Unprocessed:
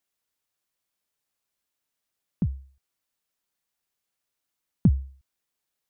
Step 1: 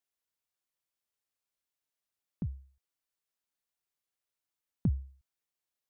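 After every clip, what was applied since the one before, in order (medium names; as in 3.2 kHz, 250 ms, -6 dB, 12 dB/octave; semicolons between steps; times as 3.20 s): peaking EQ 190 Hz -3.5 dB 0.6 oct; trim -8 dB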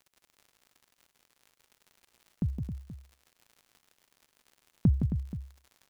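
crackle 57 per s -50 dBFS; multi-tap echo 164/172/268/478 ms -6.5/-16.5/-9/-15 dB; trim +5.5 dB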